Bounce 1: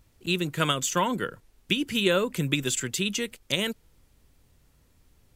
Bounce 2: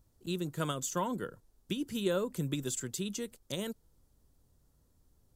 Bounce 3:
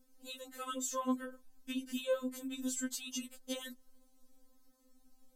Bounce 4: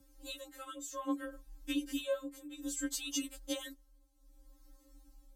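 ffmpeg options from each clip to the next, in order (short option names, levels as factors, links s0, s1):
-af "equalizer=f=2400:t=o:w=1.2:g=-13,volume=0.473"
-af "acompressor=threshold=0.0112:ratio=4,afftfilt=real='re*3.46*eq(mod(b,12),0)':imag='im*3.46*eq(mod(b,12),0)':win_size=2048:overlap=0.75,volume=1.88"
-af "afreqshift=29,tremolo=f=0.62:d=0.73,volume=1.68"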